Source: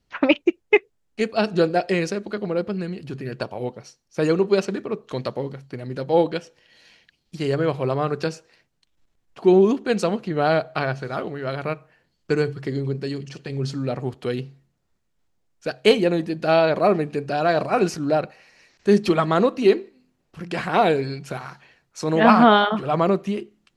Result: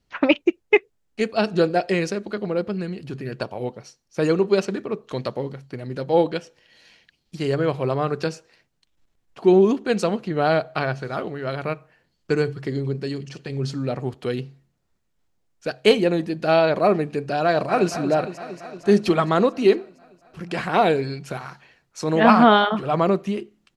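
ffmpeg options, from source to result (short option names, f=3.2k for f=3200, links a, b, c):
-filter_complex "[0:a]asplit=2[a][b];[b]afade=t=in:st=17.45:d=0.01,afade=t=out:st=17.91:d=0.01,aecho=0:1:230|460|690|920|1150|1380|1610|1840|2070|2300|2530|2760:0.266073|0.199554|0.149666|0.112249|0.084187|0.0631403|0.0473552|0.0355164|0.0266373|0.019978|0.0149835|0.0112376[c];[a][c]amix=inputs=2:normalize=0"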